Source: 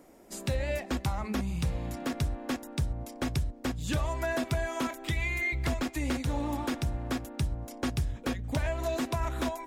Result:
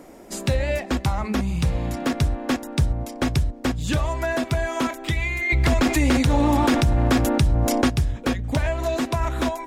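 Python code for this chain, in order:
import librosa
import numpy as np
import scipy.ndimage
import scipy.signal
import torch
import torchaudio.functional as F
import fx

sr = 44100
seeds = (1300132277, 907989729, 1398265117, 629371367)

y = fx.rider(x, sr, range_db=4, speed_s=0.5)
y = fx.high_shelf(y, sr, hz=10000.0, db=-6.0)
y = fx.env_flatten(y, sr, amount_pct=70, at=(5.49, 7.87), fade=0.02)
y = y * 10.0 ** (8.0 / 20.0)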